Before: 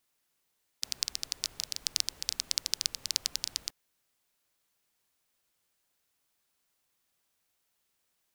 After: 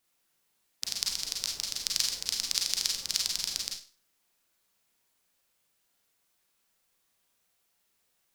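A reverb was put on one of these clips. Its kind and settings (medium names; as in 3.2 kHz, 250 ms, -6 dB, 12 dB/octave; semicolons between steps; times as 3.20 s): Schroeder reverb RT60 0.35 s, combs from 33 ms, DRR -0.5 dB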